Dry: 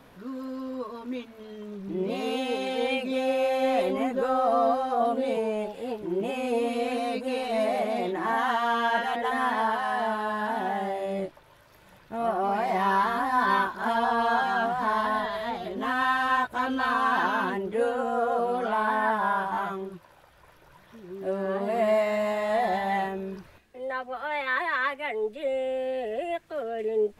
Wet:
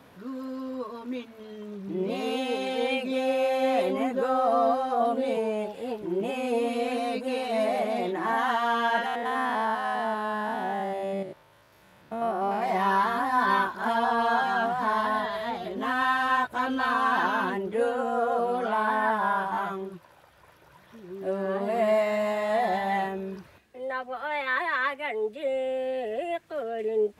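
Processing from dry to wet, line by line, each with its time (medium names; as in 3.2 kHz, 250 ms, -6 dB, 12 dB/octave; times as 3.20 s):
9.06–12.62 s: spectrogram pixelated in time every 100 ms
whole clip: high-pass 66 Hz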